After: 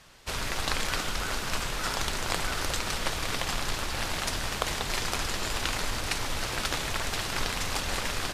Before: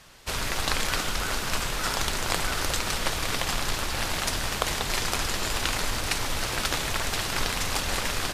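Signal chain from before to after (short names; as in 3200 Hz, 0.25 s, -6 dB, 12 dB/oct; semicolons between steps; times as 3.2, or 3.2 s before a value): high shelf 11000 Hz -5 dB; gain -2.5 dB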